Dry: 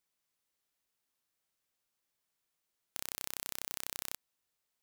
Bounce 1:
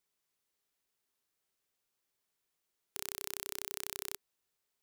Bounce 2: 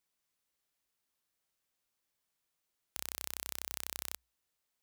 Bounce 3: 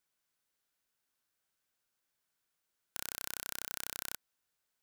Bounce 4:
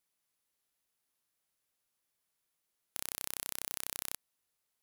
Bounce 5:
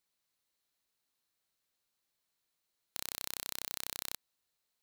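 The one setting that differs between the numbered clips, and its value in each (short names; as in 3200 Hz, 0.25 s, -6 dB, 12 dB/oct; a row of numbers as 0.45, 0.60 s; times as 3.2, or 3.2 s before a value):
bell, frequency: 400, 60, 1500, 11000, 4100 Hz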